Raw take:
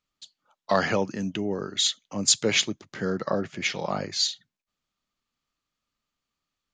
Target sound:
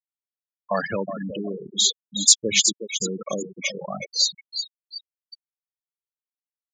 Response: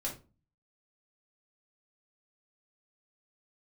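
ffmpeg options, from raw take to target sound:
-filter_complex "[0:a]asplit=2[link_01][link_02];[link_02]aecho=0:1:367|734|1101|1468|1835|2202:0.447|0.228|0.116|0.0593|0.0302|0.0154[link_03];[link_01][link_03]amix=inputs=2:normalize=0,asoftclip=type=hard:threshold=-11.5dB,crystalizer=i=2.5:c=0,afftfilt=real='re*gte(hypot(re,im),0.158)':imag='im*gte(hypot(re,im),0.158)':win_size=1024:overlap=0.75,volume=-1.5dB"

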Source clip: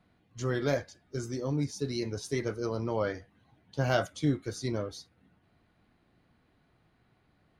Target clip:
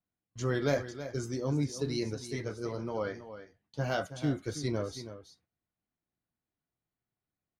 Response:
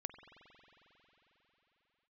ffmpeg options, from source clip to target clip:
-filter_complex "[0:a]agate=range=-25dB:threshold=-57dB:ratio=16:detection=peak,asplit=3[link_01][link_02][link_03];[link_01]afade=type=out:start_time=2.14:duration=0.02[link_04];[link_02]flanger=delay=4:depth=6.1:regen=-52:speed=1:shape=sinusoidal,afade=type=in:start_time=2.14:duration=0.02,afade=type=out:start_time=4.35:duration=0.02[link_05];[link_03]afade=type=in:start_time=4.35:duration=0.02[link_06];[link_04][link_05][link_06]amix=inputs=3:normalize=0,aecho=1:1:324:0.251"

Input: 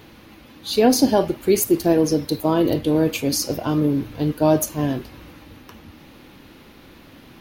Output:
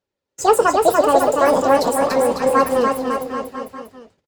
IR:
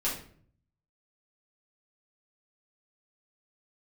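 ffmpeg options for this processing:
-filter_complex "[0:a]aemphasis=mode=reproduction:type=cd,agate=range=-39dB:threshold=-38dB:ratio=16:detection=peak,flanger=delay=3.1:depth=4.4:regen=-48:speed=1.3:shape=triangular,asetrate=76440,aresample=44100,asplit=2[link_01][link_02];[link_02]aecho=0:1:290|551|785.9|997.3|1188:0.631|0.398|0.251|0.158|0.1[link_03];[link_01][link_03]amix=inputs=2:normalize=0,volume=5.5dB"

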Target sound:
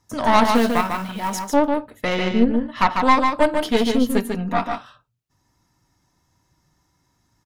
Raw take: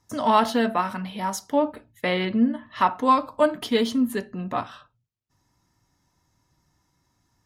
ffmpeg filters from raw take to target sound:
ffmpeg -i in.wav -filter_complex "[0:a]asettb=1/sr,asplit=3[link_01][link_02][link_03];[link_01]atrim=end=2.084[link_04];[link_02]atrim=start=2.08:end=2.62,asetpts=PTS-STARTPTS,afade=type=in:duration=0.004:curve=qsin,afade=type=out:start_time=0.536:duration=0.004:curve=qsin,lowpass=7500[link_05];[link_03]atrim=start=2.616[link_06];[link_04][link_05]acrossfade=duration=0.004:curve1=hsin:curve2=qsin[link_07];[link_07][link_06]acrossfade=duration=0.004:curve1=qsin:curve2=hsin,asettb=1/sr,asplit=3[link_08][link_09][link_10];[link_08]atrim=end=4.094[link_11];[link_09]atrim=start=4.09:end=4.66,asetpts=PTS-STARTPTS,afade=type=in:duration=0.004:curve=qsin,afade=type=out:start_time=0.566:duration=0.004:curve=qsin,aecho=1:1:4.3:0.89,atrim=end_sample=25137[link_12];[link_10]atrim=start=4.656[link_13];[link_11][link_12]acrossfade=duration=0.004:curve1=hsin:curve2=qsin[link_14];[link_14][link_13]acrossfade=duration=0.004:curve1=qsin:curve2=hsin,aeval=exprs='0.447*(cos(1*acos(clip(val(0)/0.447,-1,1)))-cos(1*PI/2))+0.1*(cos(4*acos(clip(val(0)/0.447,-1,1)))-cos(4*PI/2))':channel_layout=same,asplit=3[link_15][link_16][link_17];[link_15]afade=type=out:start_time=0.43:duration=0.02[link_18];[link_16]acrusher=bits=5:mode=log:mix=0:aa=0.000001,afade=type=in:start_time=0.43:duration=0.02,afade=type=out:start_time=1.33:duration=0.02[link_19];[link_17]afade=type=in:start_time=1.33:duration=0.02[link_20];[link_18][link_19][link_20]amix=inputs=3:normalize=0,aecho=1:1:146:0.562,volume=2dB" out.wav

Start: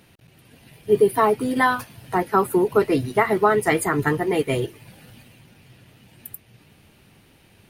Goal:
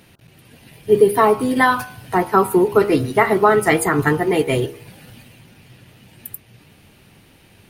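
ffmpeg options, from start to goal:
ffmpeg -i in.wav -af "bandreject=frequency=68.14:width_type=h:width=4,bandreject=frequency=136.28:width_type=h:width=4,bandreject=frequency=204.42:width_type=h:width=4,bandreject=frequency=272.56:width_type=h:width=4,bandreject=frequency=340.7:width_type=h:width=4,bandreject=frequency=408.84:width_type=h:width=4,bandreject=frequency=476.98:width_type=h:width=4,bandreject=frequency=545.12:width_type=h:width=4,bandreject=frequency=613.26:width_type=h:width=4,bandreject=frequency=681.4:width_type=h:width=4,bandreject=frequency=749.54:width_type=h:width=4,bandreject=frequency=817.68:width_type=h:width=4,bandreject=frequency=885.82:width_type=h:width=4,bandreject=frequency=953.96:width_type=h:width=4,bandreject=frequency=1022.1:width_type=h:width=4,bandreject=frequency=1090.24:width_type=h:width=4,bandreject=frequency=1158.38:width_type=h:width=4,bandreject=frequency=1226.52:width_type=h:width=4,bandreject=frequency=1294.66:width_type=h:width=4,bandreject=frequency=1362.8:width_type=h:width=4,bandreject=frequency=1430.94:width_type=h:width=4,bandreject=frequency=1499.08:width_type=h:width=4,bandreject=frequency=1567.22:width_type=h:width=4,volume=4.5dB" out.wav

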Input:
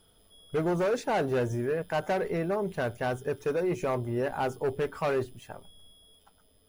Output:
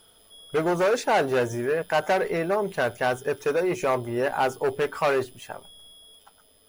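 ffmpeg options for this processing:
ffmpeg -i in.wav -af "lowshelf=frequency=310:gain=-12,volume=8.5dB" out.wav

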